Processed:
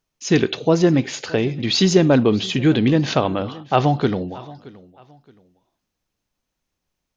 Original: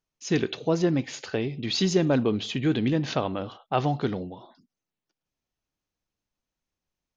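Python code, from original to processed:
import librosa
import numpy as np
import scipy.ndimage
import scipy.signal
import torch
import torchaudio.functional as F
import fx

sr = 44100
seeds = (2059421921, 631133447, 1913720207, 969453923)

y = fx.echo_feedback(x, sr, ms=622, feedback_pct=30, wet_db=-21.0)
y = y * librosa.db_to_amplitude(8.0)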